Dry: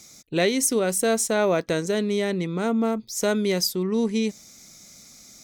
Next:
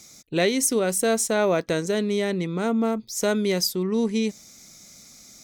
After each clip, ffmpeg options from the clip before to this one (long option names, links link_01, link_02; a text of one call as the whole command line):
ffmpeg -i in.wav -af anull out.wav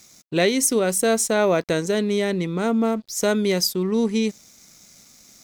ffmpeg -i in.wav -af "aeval=exprs='sgn(val(0))*max(abs(val(0))-0.00224,0)':channel_layout=same,volume=2.5dB" out.wav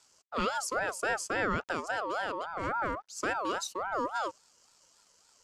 ffmpeg -i in.wav -af "highpass=140,equalizer=frequency=2900:width_type=q:width=4:gain=-4,equalizer=frequency=4400:width_type=q:width=4:gain=-8,equalizer=frequency=8900:width_type=q:width=4:gain=-9,lowpass=frequency=9600:width=0.5412,lowpass=frequency=9600:width=1.3066,aeval=exprs='val(0)*sin(2*PI*950*n/s+950*0.25/3.6*sin(2*PI*3.6*n/s))':channel_layout=same,volume=-8.5dB" out.wav